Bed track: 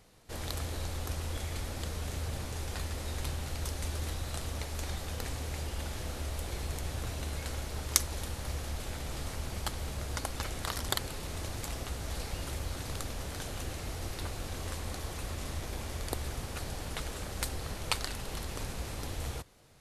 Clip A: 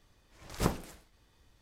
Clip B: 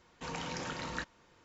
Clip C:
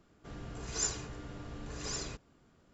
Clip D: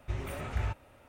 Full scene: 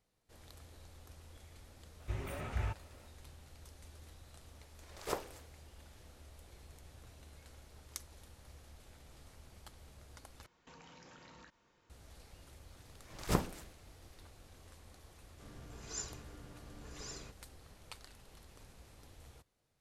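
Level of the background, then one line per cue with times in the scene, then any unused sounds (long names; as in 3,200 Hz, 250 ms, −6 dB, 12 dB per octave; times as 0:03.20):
bed track −19.5 dB
0:02.00: mix in D −4 dB
0:04.47: mix in A −5.5 dB + low shelf with overshoot 290 Hz −13 dB, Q 1.5
0:10.46: overwrite with B −8 dB + downward compressor 10 to 1, threshold −45 dBFS
0:12.69: mix in A −1.5 dB
0:15.15: mix in C −9 dB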